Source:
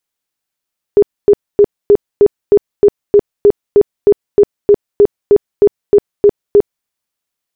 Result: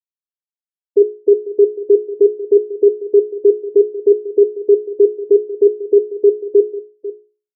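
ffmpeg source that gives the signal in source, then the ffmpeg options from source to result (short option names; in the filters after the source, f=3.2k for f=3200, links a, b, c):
-f lavfi -i "aevalsrc='0.75*sin(2*PI*409*mod(t,0.31))*lt(mod(t,0.31),22/409)':d=5.89:s=44100"
-filter_complex "[0:a]afftfilt=real='re*gte(hypot(re,im),1.41)':imag='im*gte(hypot(re,im),1.41)':win_size=1024:overlap=0.75,bandreject=f=60:t=h:w=6,bandreject=f=120:t=h:w=6,bandreject=f=180:t=h:w=6,bandreject=f=240:t=h:w=6,bandreject=f=300:t=h:w=6,bandreject=f=360:t=h:w=6,bandreject=f=420:t=h:w=6,asplit=2[a][b];[b]adelay=495.6,volume=-15dB,highshelf=f=4k:g=-11.2[c];[a][c]amix=inputs=2:normalize=0"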